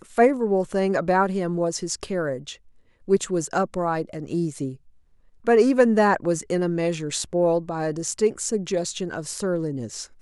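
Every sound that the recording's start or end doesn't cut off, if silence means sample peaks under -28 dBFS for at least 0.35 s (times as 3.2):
3.08–4.7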